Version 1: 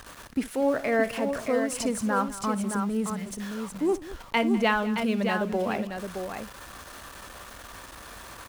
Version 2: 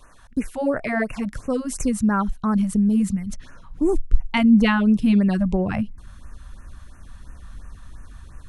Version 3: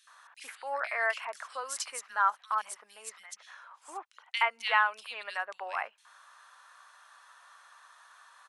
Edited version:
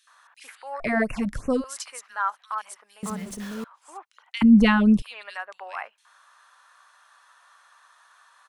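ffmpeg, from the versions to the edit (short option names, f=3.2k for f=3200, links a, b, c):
-filter_complex "[1:a]asplit=2[a][b];[2:a]asplit=4[c][d][e][f];[c]atrim=end=0.802[g];[a]atrim=start=0.798:end=1.642[h];[d]atrim=start=1.638:end=3.032[i];[0:a]atrim=start=3.028:end=3.642[j];[e]atrim=start=3.638:end=4.422[k];[b]atrim=start=4.418:end=5.022[l];[f]atrim=start=5.018[m];[g][h]acrossfade=d=0.004:c1=hsin:c2=hsin[n];[n][i]acrossfade=d=0.004:c1=hsin:c2=hsin[o];[o][j]acrossfade=d=0.004:c1=hsin:c2=hsin[p];[p][k]acrossfade=d=0.004:c1=hsin:c2=hsin[q];[q][l]acrossfade=d=0.004:c1=hsin:c2=hsin[r];[r][m]acrossfade=d=0.004:c1=hsin:c2=hsin"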